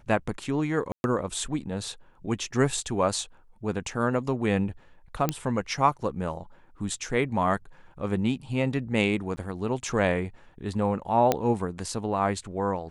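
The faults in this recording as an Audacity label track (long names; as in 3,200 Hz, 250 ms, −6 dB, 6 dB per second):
0.920000	1.040000	drop-out 121 ms
5.290000	5.290000	click −10 dBFS
9.360000	9.370000	drop-out 10 ms
11.320000	11.320000	click −8 dBFS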